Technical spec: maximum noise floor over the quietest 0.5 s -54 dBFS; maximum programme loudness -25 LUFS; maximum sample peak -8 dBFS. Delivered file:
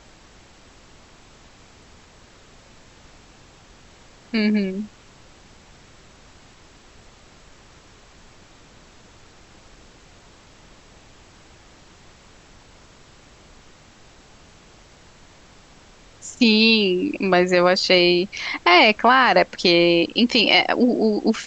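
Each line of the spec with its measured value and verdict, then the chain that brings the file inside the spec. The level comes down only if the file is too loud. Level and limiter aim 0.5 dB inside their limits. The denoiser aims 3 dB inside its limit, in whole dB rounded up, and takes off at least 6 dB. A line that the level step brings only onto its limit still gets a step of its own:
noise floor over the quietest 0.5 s -49 dBFS: fail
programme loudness -17.0 LUFS: fail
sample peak -4.0 dBFS: fail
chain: gain -8.5 dB

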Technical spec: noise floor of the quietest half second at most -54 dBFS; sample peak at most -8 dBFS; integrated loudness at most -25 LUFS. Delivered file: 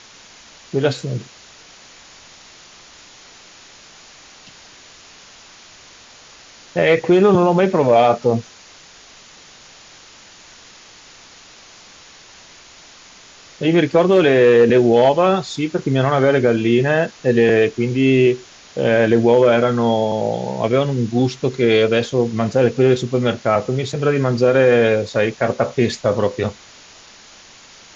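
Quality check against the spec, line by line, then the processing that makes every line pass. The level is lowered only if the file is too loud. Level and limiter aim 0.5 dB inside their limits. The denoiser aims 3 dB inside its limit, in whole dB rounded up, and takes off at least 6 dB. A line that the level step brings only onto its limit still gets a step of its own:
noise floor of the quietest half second -44 dBFS: fail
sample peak -4.0 dBFS: fail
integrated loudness -16.5 LUFS: fail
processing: denoiser 6 dB, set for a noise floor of -44 dBFS; gain -9 dB

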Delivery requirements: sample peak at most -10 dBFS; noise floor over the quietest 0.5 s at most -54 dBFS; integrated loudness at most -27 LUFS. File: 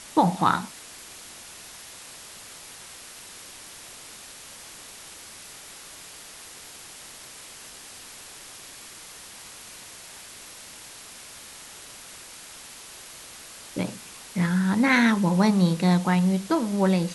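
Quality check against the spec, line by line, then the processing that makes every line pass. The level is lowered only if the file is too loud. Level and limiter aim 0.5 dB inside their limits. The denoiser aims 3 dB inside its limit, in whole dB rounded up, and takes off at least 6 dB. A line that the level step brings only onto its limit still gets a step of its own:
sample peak -6.5 dBFS: fail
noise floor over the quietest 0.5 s -44 dBFS: fail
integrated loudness -22.5 LUFS: fail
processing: denoiser 8 dB, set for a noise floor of -44 dBFS; gain -5 dB

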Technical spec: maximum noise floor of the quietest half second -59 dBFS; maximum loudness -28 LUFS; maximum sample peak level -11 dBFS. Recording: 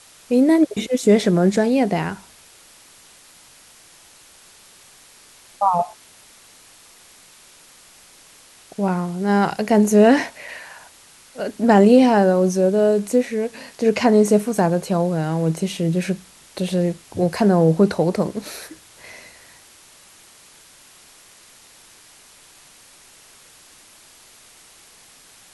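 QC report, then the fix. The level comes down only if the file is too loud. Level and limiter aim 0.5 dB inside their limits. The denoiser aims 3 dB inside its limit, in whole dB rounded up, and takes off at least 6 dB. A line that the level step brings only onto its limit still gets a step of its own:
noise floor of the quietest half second -49 dBFS: fail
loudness -18.5 LUFS: fail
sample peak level -2.5 dBFS: fail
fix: denoiser 6 dB, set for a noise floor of -49 dBFS; gain -10 dB

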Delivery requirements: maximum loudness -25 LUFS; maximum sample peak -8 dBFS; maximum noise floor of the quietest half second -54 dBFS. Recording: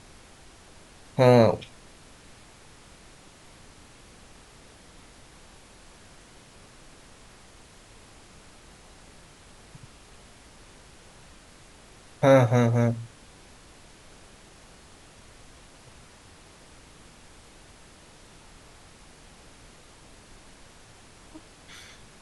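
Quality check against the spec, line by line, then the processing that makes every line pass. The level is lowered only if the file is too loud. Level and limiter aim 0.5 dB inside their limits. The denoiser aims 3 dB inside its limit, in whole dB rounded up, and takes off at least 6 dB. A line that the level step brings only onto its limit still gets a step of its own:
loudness -21.5 LUFS: fail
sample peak -5.0 dBFS: fail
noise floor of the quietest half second -51 dBFS: fail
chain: gain -4 dB

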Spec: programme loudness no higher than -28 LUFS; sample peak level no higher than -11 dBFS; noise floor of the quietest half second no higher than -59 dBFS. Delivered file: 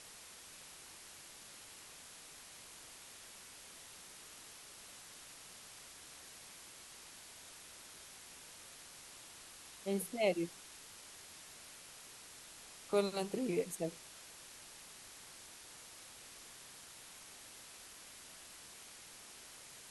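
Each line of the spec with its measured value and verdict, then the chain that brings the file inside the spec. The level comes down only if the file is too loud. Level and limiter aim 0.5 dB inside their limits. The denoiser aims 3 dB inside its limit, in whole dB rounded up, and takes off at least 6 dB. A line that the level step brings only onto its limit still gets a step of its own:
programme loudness -46.0 LUFS: OK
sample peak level -19.0 dBFS: OK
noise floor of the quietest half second -55 dBFS: fail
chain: denoiser 7 dB, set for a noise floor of -55 dBFS

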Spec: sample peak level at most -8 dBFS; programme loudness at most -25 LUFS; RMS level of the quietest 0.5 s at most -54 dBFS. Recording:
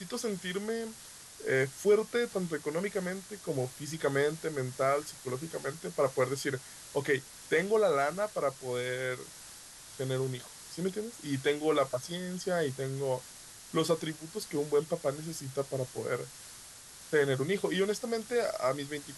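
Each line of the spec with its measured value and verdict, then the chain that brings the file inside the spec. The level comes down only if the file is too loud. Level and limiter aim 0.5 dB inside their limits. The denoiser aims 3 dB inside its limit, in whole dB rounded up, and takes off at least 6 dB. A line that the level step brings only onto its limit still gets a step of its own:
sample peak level -15.0 dBFS: OK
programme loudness -32.5 LUFS: OK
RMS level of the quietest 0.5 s -50 dBFS: fail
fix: denoiser 7 dB, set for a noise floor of -50 dBFS

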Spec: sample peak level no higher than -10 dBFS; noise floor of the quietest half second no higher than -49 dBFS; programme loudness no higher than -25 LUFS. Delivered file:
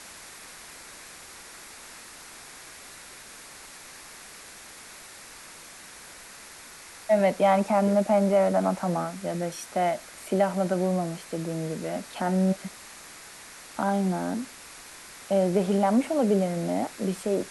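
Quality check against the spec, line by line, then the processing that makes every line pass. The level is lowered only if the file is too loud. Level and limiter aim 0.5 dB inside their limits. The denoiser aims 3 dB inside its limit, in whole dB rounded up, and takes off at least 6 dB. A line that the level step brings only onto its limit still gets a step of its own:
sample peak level -11.0 dBFS: OK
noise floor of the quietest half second -46 dBFS: fail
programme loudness -26.0 LUFS: OK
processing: denoiser 6 dB, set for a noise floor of -46 dBFS

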